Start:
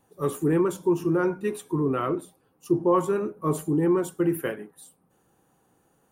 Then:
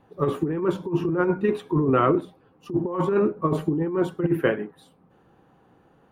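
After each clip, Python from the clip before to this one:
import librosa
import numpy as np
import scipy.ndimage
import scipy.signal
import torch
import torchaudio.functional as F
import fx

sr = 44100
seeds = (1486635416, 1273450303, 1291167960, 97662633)

y = fx.air_absorb(x, sr, metres=350.0)
y = fx.over_compress(y, sr, threshold_db=-26.0, ratio=-0.5)
y = fx.high_shelf(y, sr, hz=4000.0, db=7.0)
y = y * librosa.db_to_amplitude(5.5)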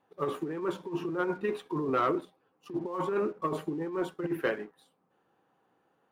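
y = fx.highpass(x, sr, hz=510.0, slope=6)
y = fx.leveller(y, sr, passes=1)
y = y * librosa.db_to_amplitude(-7.5)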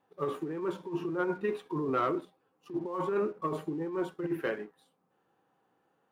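y = fx.hpss(x, sr, part='percussive', gain_db=-5)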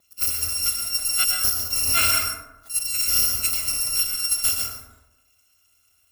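y = fx.bit_reversed(x, sr, seeds[0], block=256)
y = fx.rev_plate(y, sr, seeds[1], rt60_s=1.0, hf_ratio=0.35, predelay_ms=100, drr_db=0.5)
y = y * librosa.db_to_amplitude(9.0)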